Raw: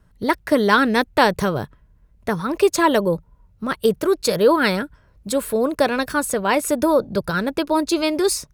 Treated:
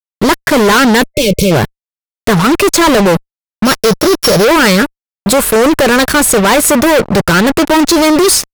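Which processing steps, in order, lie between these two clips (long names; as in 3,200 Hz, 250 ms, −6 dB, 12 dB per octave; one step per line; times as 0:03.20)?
0:03.65–0:04.45: samples sorted by size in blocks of 8 samples
fuzz pedal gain 32 dB, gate −34 dBFS
0:01.03–0:01.52: gain on a spectral selection 610–2,100 Hz −28 dB
level +7 dB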